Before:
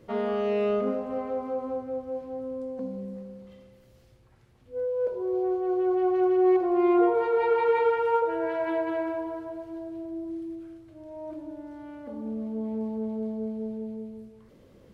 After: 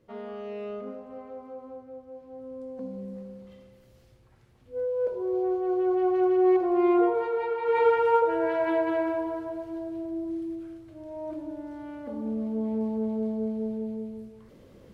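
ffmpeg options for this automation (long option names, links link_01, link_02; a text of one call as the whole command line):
ffmpeg -i in.wav -af "volume=10dB,afade=type=in:start_time=2.18:duration=1.08:silence=0.298538,afade=type=out:start_time=6.89:duration=0.72:silence=0.421697,afade=type=in:start_time=7.61:duration=0.23:silence=0.316228" out.wav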